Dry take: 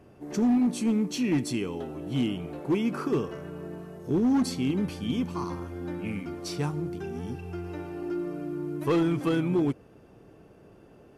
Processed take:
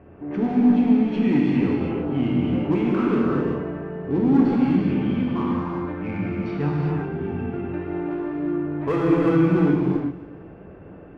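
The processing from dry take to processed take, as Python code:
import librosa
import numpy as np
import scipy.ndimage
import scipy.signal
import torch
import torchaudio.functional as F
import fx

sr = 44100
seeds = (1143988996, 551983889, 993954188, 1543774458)

p1 = scipy.signal.sosfilt(scipy.signal.butter(4, 2400.0, 'lowpass', fs=sr, output='sos'), x)
p2 = 10.0 ** (-36.0 / 20.0) * np.tanh(p1 / 10.0 ** (-36.0 / 20.0))
p3 = p1 + F.gain(torch.from_numpy(p2), -3.0).numpy()
p4 = fx.echo_feedback(p3, sr, ms=266, feedback_pct=37, wet_db=-19)
y = fx.rev_gated(p4, sr, seeds[0], gate_ms=420, shape='flat', drr_db=-4.0)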